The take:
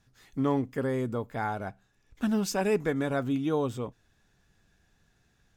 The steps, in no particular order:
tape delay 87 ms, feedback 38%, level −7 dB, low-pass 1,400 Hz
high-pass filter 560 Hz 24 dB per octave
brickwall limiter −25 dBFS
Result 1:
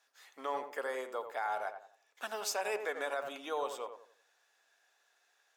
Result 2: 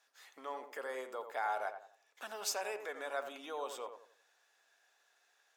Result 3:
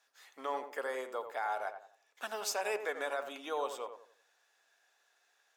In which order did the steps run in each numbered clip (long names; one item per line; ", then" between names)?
high-pass filter, then tape delay, then brickwall limiter
brickwall limiter, then high-pass filter, then tape delay
high-pass filter, then brickwall limiter, then tape delay